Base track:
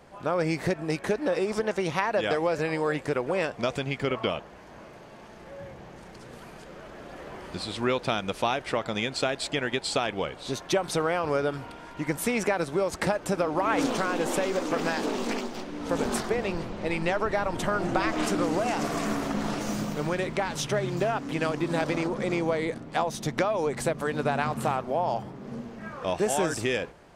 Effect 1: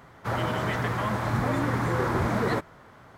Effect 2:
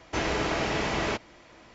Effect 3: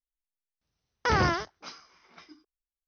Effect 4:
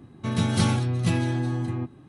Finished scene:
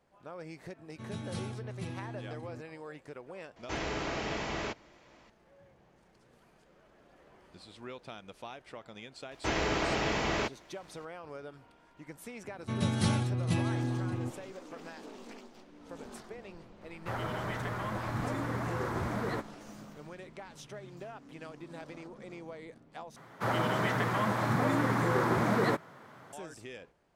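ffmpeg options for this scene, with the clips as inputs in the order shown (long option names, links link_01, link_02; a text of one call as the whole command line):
ffmpeg -i bed.wav -i cue0.wav -i cue1.wav -i cue2.wav -i cue3.wav -filter_complex "[4:a]asplit=2[link_01][link_02];[2:a]asplit=2[link_03][link_04];[1:a]asplit=2[link_05][link_06];[0:a]volume=-18.5dB[link_07];[link_04]aeval=exprs='sgn(val(0))*max(abs(val(0))-0.00106,0)':channel_layout=same[link_08];[link_06]highpass=frequency=120:width=0.5412,highpass=frequency=120:width=1.3066[link_09];[link_07]asplit=2[link_10][link_11];[link_10]atrim=end=23.164[link_12];[link_09]atrim=end=3.17,asetpts=PTS-STARTPTS,volume=-1.5dB[link_13];[link_11]atrim=start=26.326[link_14];[link_01]atrim=end=2.08,asetpts=PTS-STARTPTS,volume=-17dB,afade=type=in:duration=0.004:curve=hsin,afade=type=out:start_time=2.076:duration=0.004:curve=hsin,adelay=750[link_15];[link_03]atrim=end=1.74,asetpts=PTS-STARTPTS,volume=-7.5dB,afade=type=in:duration=0.004:curve=hsin,afade=type=out:start_time=1.736:duration=0.004:curve=hsin,adelay=3560[link_16];[link_08]atrim=end=1.74,asetpts=PTS-STARTPTS,volume=-2.5dB,afade=type=in:duration=0.004:curve=hsin,afade=type=out:start_time=1.736:duration=0.004:curve=hsin,adelay=9310[link_17];[link_02]atrim=end=2.08,asetpts=PTS-STARTPTS,volume=-6.5dB,afade=type=in:duration=0.004:curve=hsin,afade=type=out:start_time=2.076:duration=0.004:curve=hsin,adelay=12440[link_18];[link_05]atrim=end=3.17,asetpts=PTS-STARTPTS,volume=-8.5dB,afade=type=in:duration=0.004:curve=hsin,afade=type=out:start_time=3.166:duration=0.004:curve=hsin,adelay=16810[link_19];[link_12][link_13]acrossfade=duration=0.004:curve1=hsin:curve2=hsin[link_20];[link_20][link_14]acrossfade=duration=0.004:curve1=hsin:curve2=hsin[link_21];[link_21][link_15][link_16][link_17][link_18][link_19]amix=inputs=6:normalize=0" out.wav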